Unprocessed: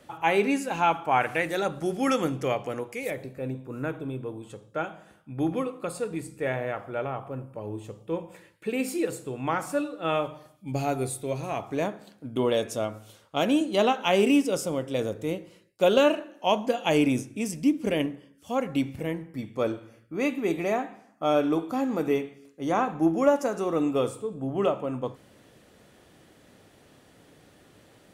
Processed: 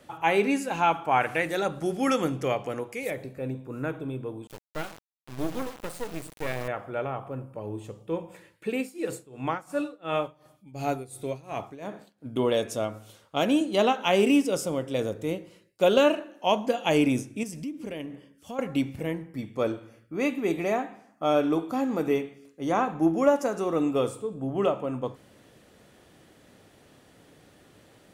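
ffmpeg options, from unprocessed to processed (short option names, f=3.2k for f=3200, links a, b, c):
-filter_complex "[0:a]asettb=1/sr,asplit=3[a][b][c];[a]atrim=end=4.474[d];[b]atrim=start=4.47:end=6.68,asetpts=PTS-STARTPTS,afade=t=in:d=0.004:c=qsin,afade=t=out:st=2.206:d=0.004:c=qsin,acrusher=bits=4:dc=4:mix=0:aa=0.000001[e];[c]atrim=start=6.676[f];[d][e]acrossfade=d=0.004:c1=hsin:c2=qsin[g];[g][f]acrossfade=d=0.004:c1=qsin:c2=hsin,asettb=1/sr,asplit=3[h][i][j];[h]atrim=end=8.754[k];[i]atrim=start=8.75:end=12.26,asetpts=PTS-STARTPTS,afade=t=in:d=0.004:c=qsin,afade=t=out:st=3.506:d=0.004:c=qsin,tremolo=f=2.8:d=0.87[l];[j]atrim=start=12.256[m];[k][l]acrossfade=d=0.004:c1=hsin:c2=qsin[n];[n][m]acrossfade=d=0.004:c1=qsin:c2=hsin,asettb=1/sr,asplit=3[o][p][q];[o]atrim=end=17.434[r];[p]atrim=start=17.43:end=18.59,asetpts=PTS-STARTPTS,afade=t=in:d=0.004:c=qsin,afade=t=out:st=1.156:d=0.004:c=qsin,acompressor=threshold=-35dB:ratio=3:attack=3.2:release=140:knee=1:detection=peak[s];[q]atrim=start=18.586[t];[r][s]acrossfade=d=0.004:c1=hsin:c2=qsin[u];[u][t]acrossfade=d=0.004:c1=qsin:c2=hsin"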